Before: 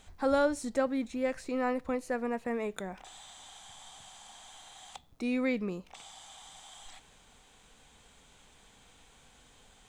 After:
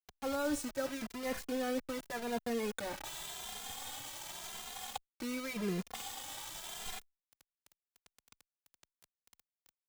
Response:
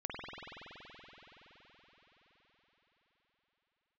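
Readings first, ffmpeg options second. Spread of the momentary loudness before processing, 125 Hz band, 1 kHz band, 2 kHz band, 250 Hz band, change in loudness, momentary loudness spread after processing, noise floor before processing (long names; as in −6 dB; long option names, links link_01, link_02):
20 LU, +1.0 dB, −5.0 dB, −3.5 dB, −5.5 dB, −7.0 dB, 7 LU, −61 dBFS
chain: -filter_complex "[0:a]areverse,acompressor=threshold=-40dB:ratio=6,areverse,acrusher=bits=7:mix=0:aa=0.000001,asplit=2[link_01][link_02];[link_02]adelay=2.5,afreqshift=0.88[link_03];[link_01][link_03]amix=inputs=2:normalize=1,volume=8.5dB"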